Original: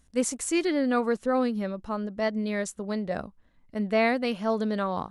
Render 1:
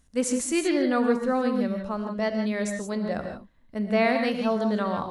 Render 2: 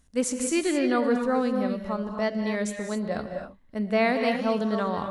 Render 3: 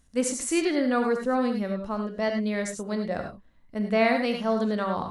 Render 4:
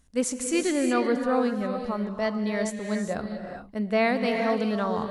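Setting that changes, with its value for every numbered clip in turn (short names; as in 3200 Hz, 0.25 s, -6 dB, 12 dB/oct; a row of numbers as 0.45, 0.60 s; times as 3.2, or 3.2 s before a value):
non-linear reverb, gate: 0.19, 0.29, 0.12, 0.44 s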